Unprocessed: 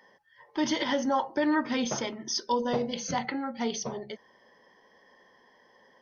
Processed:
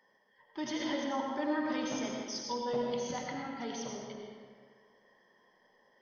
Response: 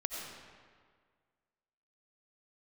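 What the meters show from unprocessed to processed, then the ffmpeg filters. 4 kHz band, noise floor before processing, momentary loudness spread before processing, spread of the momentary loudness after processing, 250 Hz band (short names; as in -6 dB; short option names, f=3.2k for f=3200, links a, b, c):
-7.5 dB, -62 dBFS, 10 LU, 12 LU, -6.0 dB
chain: -filter_complex "[1:a]atrim=start_sample=2205[a];[0:a][a]afir=irnorm=-1:irlink=0,volume=-9dB"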